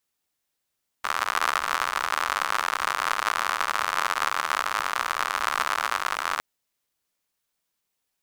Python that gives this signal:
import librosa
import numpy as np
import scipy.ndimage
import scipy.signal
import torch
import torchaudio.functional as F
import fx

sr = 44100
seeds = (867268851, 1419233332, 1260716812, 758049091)

y = fx.rain(sr, seeds[0], length_s=5.36, drops_per_s=95.0, hz=1200.0, bed_db=-29.0)